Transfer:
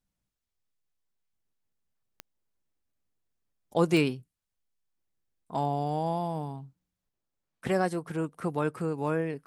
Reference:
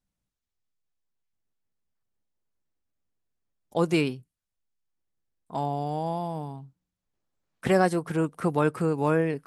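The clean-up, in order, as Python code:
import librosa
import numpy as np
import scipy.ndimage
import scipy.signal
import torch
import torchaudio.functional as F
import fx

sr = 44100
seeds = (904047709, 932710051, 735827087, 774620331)

y = fx.fix_declick_ar(x, sr, threshold=10.0)
y = fx.gain(y, sr, db=fx.steps((0.0, 0.0), (7.09, 5.5)))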